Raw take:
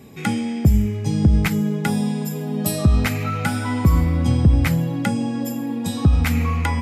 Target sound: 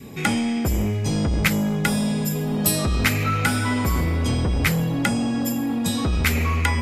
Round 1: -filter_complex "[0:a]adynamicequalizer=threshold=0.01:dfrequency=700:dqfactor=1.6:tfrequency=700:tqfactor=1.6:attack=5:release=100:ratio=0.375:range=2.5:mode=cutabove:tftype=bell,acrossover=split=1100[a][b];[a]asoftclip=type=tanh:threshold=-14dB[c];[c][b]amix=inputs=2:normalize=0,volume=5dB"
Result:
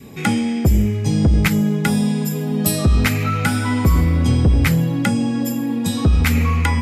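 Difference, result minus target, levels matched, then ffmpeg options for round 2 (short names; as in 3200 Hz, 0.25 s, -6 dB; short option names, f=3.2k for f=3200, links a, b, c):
soft clip: distortion -7 dB
-filter_complex "[0:a]adynamicequalizer=threshold=0.01:dfrequency=700:dqfactor=1.6:tfrequency=700:tqfactor=1.6:attack=5:release=100:ratio=0.375:range=2.5:mode=cutabove:tftype=bell,acrossover=split=1100[a][b];[a]asoftclip=type=tanh:threshold=-24.5dB[c];[c][b]amix=inputs=2:normalize=0,volume=5dB"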